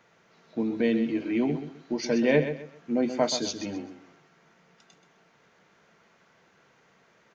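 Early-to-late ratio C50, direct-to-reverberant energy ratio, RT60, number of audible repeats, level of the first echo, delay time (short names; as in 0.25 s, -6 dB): none, none, none, 3, -10.0 dB, 0.129 s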